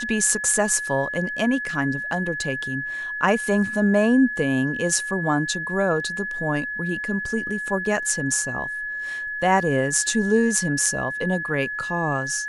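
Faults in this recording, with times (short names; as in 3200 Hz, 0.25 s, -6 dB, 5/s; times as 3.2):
tone 1700 Hz -27 dBFS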